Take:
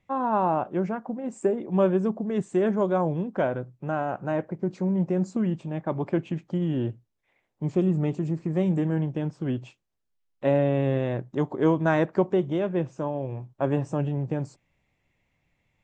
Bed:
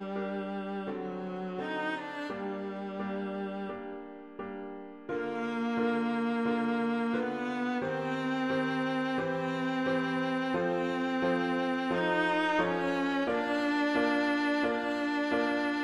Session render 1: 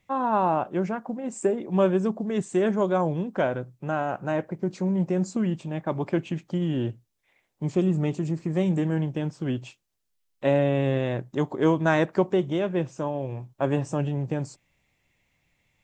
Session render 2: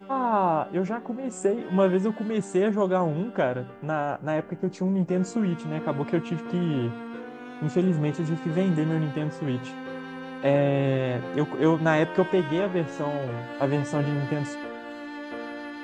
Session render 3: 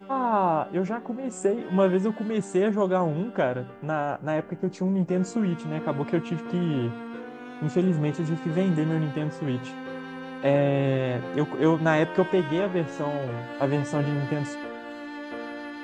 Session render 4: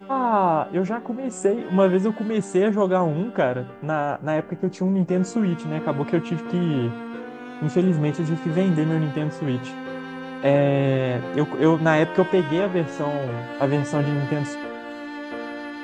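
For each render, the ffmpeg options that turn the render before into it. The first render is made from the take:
-af "highshelf=f=2600:g=9.5"
-filter_complex "[1:a]volume=0.473[s0];[0:a][s0]amix=inputs=2:normalize=0"
-af anull
-af "volume=1.5"

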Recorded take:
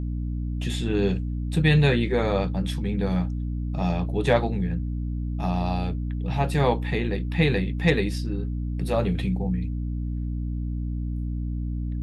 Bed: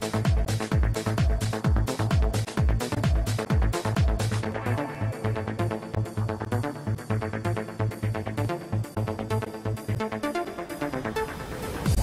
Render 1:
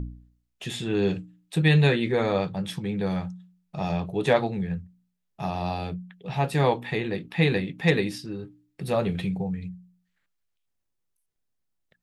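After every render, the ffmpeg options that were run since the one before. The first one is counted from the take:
-af "bandreject=f=60:t=h:w=4,bandreject=f=120:t=h:w=4,bandreject=f=180:t=h:w=4,bandreject=f=240:t=h:w=4,bandreject=f=300:t=h:w=4"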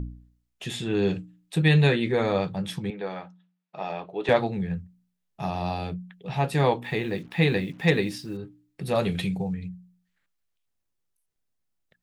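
-filter_complex "[0:a]asettb=1/sr,asplit=3[s0][s1][s2];[s0]atrim=end=2.904[s3];[s1]atrim=start=2.9:end=4.29,asetpts=PTS-STARTPTS,afade=t=in:d=0.004:c=qsin,afade=t=out:st=1.386:d=0.004:c=qsin,highpass=400,lowpass=3200[s4];[s2]atrim=start=4.286[s5];[s3][s4]acrossfade=d=0.004:c1=hsin:c2=qsin[s6];[s6][s5]acrossfade=d=0.004:c1=qsin:c2=hsin,asettb=1/sr,asplit=3[s7][s8][s9];[s7]atrim=end=6.844[s10];[s8]atrim=start=6.84:end=8.37,asetpts=PTS-STARTPTS,afade=t=in:d=0.004:c=qsin,afade=t=out:st=1.526:d=0.004:c=qsin,acrusher=bits=8:mix=0:aa=0.5[s11];[s9]atrim=start=8.366[s12];[s10][s11]acrossfade=d=0.004:c1=hsin:c2=qsin[s13];[s13][s12]acrossfade=d=0.004:c1=qsin:c2=hsin,asettb=1/sr,asplit=3[s14][s15][s16];[s14]atrim=end=8.954[s17];[s15]atrim=start=8.95:end=9.54,asetpts=PTS-STARTPTS,afade=t=in:d=0.004:c=qsin,afade=t=out:st=0.586:d=0.004:c=qsin,highshelf=f=2900:g=10[s18];[s16]atrim=start=9.536[s19];[s17][s18]acrossfade=d=0.004:c1=hsin:c2=qsin[s20];[s20][s19]acrossfade=d=0.004:c1=qsin:c2=hsin"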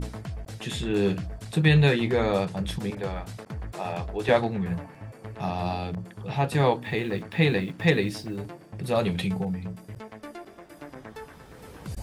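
-filter_complex "[1:a]volume=0.237[s0];[0:a][s0]amix=inputs=2:normalize=0"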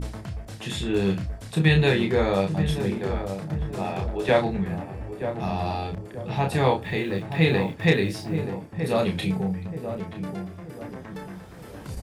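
-filter_complex "[0:a]asplit=2[s0][s1];[s1]adelay=31,volume=0.562[s2];[s0][s2]amix=inputs=2:normalize=0,asplit=2[s3][s4];[s4]adelay=928,lowpass=f=820:p=1,volume=0.422,asplit=2[s5][s6];[s6]adelay=928,lowpass=f=820:p=1,volume=0.47,asplit=2[s7][s8];[s8]adelay=928,lowpass=f=820:p=1,volume=0.47,asplit=2[s9][s10];[s10]adelay=928,lowpass=f=820:p=1,volume=0.47,asplit=2[s11][s12];[s12]adelay=928,lowpass=f=820:p=1,volume=0.47[s13];[s3][s5][s7][s9][s11][s13]amix=inputs=6:normalize=0"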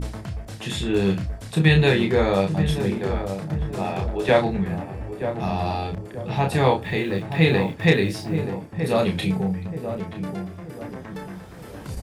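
-af "volume=1.33"

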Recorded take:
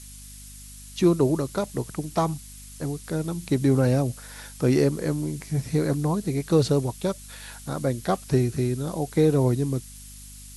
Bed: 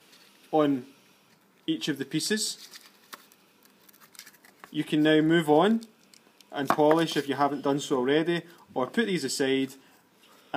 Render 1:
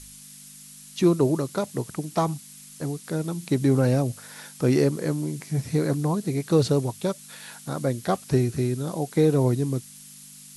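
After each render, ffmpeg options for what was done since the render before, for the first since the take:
-af "bandreject=f=50:t=h:w=4,bandreject=f=100:t=h:w=4"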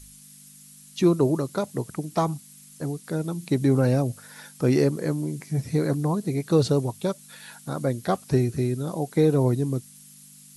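-af "afftdn=nr=6:nf=-46"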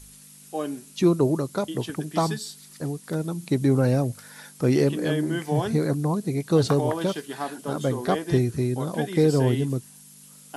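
-filter_complex "[1:a]volume=0.473[s0];[0:a][s0]amix=inputs=2:normalize=0"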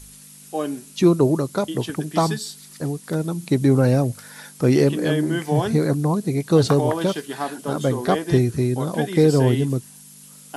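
-af "volume=1.58"

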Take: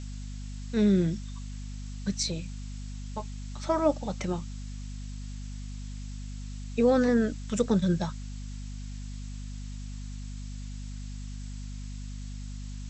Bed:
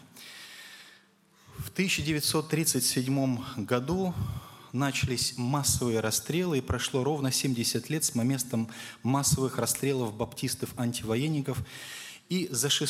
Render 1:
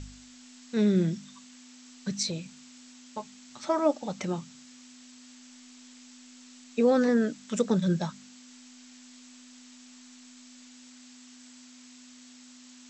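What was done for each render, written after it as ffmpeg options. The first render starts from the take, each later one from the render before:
-af "bandreject=f=50:t=h:w=4,bandreject=f=100:t=h:w=4,bandreject=f=150:t=h:w=4,bandreject=f=200:t=h:w=4"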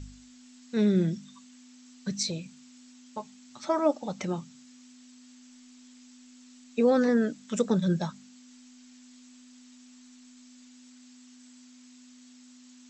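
-af "afftdn=nr=6:nf=-51"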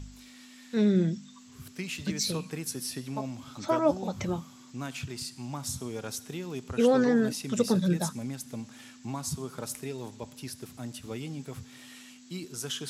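-filter_complex "[1:a]volume=0.355[s0];[0:a][s0]amix=inputs=2:normalize=0"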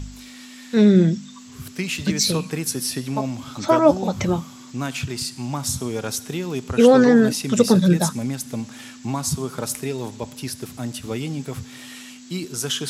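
-af "volume=3.16"

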